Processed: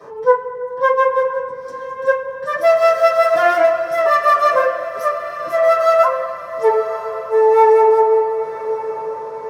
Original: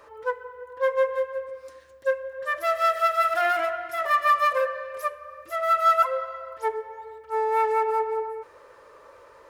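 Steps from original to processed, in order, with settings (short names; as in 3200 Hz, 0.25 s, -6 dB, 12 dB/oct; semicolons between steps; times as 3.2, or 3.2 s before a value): HPF 71 Hz; diffused feedback echo 1.054 s, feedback 44%, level -12.5 dB; reverb RT60 0.20 s, pre-delay 3 ms, DRR -10.5 dB; gain -7 dB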